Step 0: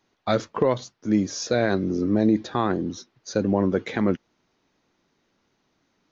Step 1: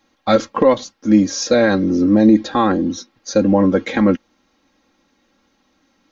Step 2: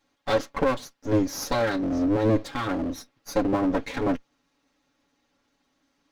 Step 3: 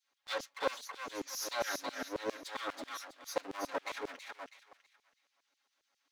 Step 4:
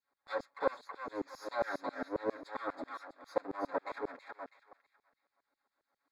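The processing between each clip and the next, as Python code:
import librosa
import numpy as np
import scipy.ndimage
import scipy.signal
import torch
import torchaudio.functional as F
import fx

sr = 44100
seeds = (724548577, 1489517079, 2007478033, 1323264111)

y1 = x + 0.78 * np.pad(x, (int(3.7 * sr / 1000.0), 0))[:len(x)]
y1 = F.gain(torch.from_numpy(y1), 6.0).numpy()
y2 = fx.lower_of_two(y1, sr, delay_ms=7.1)
y2 = F.gain(torch.from_numpy(y2), -8.0).numpy()
y3 = fx.echo_thinned(y2, sr, ms=325, feedback_pct=31, hz=770.0, wet_db=-4.5)
y3 = fx.filter_lfo_highpass(y3, sr, shape='saw_down', hz=7.4, low_hz=430.0, high_hz=4900.0, q=0.78)
y3 = F.gain(torch.from_numpy(y3), -6.0).numpy()
y4 = np.convolve(y3, np.full(15, 1.0 / 15))[:len(y3)]
y4 = F.gain(torch.from_numpy(y4), 3.0).numpy()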